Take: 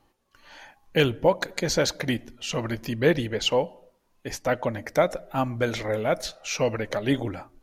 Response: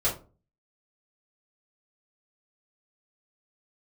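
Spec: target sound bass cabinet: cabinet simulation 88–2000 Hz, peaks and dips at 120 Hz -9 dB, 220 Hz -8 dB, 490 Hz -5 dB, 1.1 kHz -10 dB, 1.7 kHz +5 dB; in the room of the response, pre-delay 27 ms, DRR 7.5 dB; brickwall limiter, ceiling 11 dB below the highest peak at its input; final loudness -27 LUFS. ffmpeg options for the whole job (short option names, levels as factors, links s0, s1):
-filter_complex "[0:a]alimiter=limit=0.119:level=0:latency=1,asplit=2[s0][s1];[1:a]atrim=start_sample=2205,adelay=27[s2];[s1][s2]afir=irnorm=-1:irlink=0,volume=0.133[s3];[s0][s3]amix=inputs=2:normalize=0,highpass=f=88:w=0.5412,highpass=f=88:w=1.3066,equalizer=f=120:t=q:w=4:g=-9,equalizer=f=220:t=q:w=4:g=-8,equalizer=f=490:t=q:w=4:g=-5,equalizer=f=1100:t=q:w=4:g=-10,equalizer=f=1700:t=q:w=4:g=5,lowpass=f=2000:w=0.5412,lowpass=f=2000:w=1.3066,volume=2.11"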